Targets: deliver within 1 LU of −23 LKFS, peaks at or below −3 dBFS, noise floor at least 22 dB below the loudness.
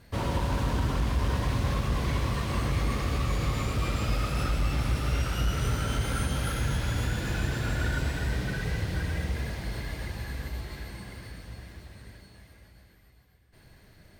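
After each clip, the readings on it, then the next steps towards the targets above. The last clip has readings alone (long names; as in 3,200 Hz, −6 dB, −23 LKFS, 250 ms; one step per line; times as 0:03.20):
integrated loudness −30.0 LKFS; sample peak −16.5 dBFS; target loudness −23.0 LKFS
→ level +7 dB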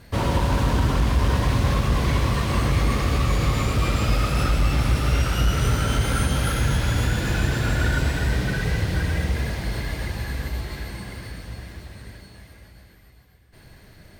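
integrated loudness −23.0 LKFS; sample peak −9.5 dBFS; background noise floor −50 dBFS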